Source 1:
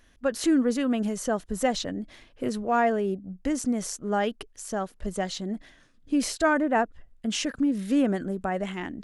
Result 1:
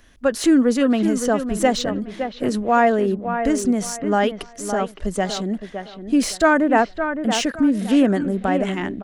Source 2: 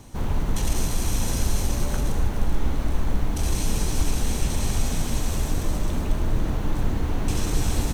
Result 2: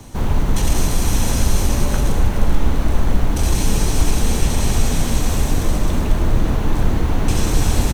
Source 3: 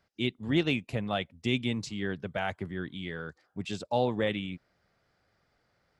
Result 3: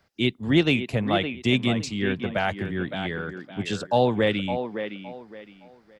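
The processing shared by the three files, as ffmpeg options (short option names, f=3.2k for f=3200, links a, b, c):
-filter_complex "[0:a]acrossover=split=150|3600[a][b][c];[b]aecho=1:1:564|1128|1692:0.398|0.104|0.0269[d];[c]asoftclip=type=tanh:threshold=-28dB[e];[a][d][e]amix=inputs=3:normalize=0,volume=7dB"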